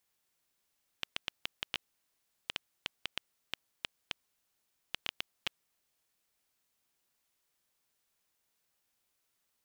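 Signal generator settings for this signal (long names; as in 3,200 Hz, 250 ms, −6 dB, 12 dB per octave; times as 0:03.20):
Geiger counter clicks 4.5 per second −15 dBFS 4.76 s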